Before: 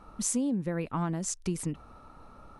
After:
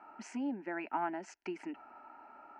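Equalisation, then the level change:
loudspeaker in its box 390–3,900 Hz, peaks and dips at 940 Hz +8 dB, 1,400 Hz +3 dB, 2,700 Hz +4 dB
phaser with its sweep stopped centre 740 Hz, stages 8
+1.0 dB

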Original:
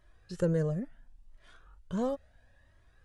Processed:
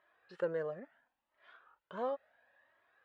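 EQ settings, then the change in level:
high-pass filter 700 Hz 12 dB per octave
high-frequency loss of the air 440 metres
+4.0 dB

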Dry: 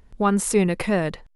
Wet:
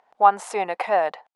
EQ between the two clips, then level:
high-pass with resonance 760 Hz, resonance Q 4.9
high-frequency loss of the air 55 metres
high-shelf EQ 3,600 Hz −7.5 dB
0.0 dB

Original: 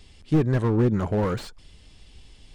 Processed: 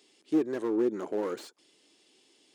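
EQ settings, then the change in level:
four-pole ladder high-pass 290 Hz, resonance 55%
high-shelf EQ 4,800 Hz +6.5 dB
parametric band 6,600 Hz +3.5 dB 0.22 octaves
0.0 dB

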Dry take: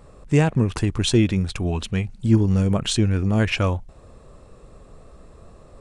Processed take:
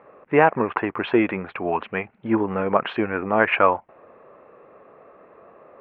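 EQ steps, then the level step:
dynamic equaliser 1,000 Hz, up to +8 dB, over −40 dBFS, Q 0.93
high-pass filter 420 Hz 12 dB per octave
Butterworth low-pass 2,400 Hz 36 dB per octave
+5.0 dB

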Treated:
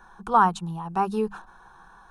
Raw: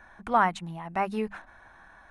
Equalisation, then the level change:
phaser with its sweep stopped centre 410 Hz, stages 8
+6.0 dB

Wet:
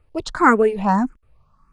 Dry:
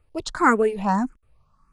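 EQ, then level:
high-shelf EQ 5,100 Hz −8 dB
+4.0 dB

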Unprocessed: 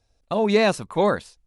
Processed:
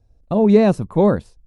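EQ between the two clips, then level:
tilt shelving filter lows +7.5 dB, about 1,200 Hz
low-shelf EQ 330 Hz +9.5 dB
high-shelf EQ 6,500 Hz +6 dB
−4.0 dB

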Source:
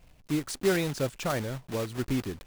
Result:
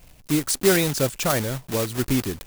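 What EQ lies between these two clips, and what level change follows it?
high-shelf EQ 6,000 Hz +11 dB
+6.5 dB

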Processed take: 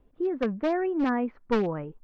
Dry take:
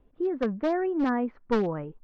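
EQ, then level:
dynamic equaliser 2,500 Hz, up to +5 dB, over −52 dBFS, Q 2.8
0.0 dB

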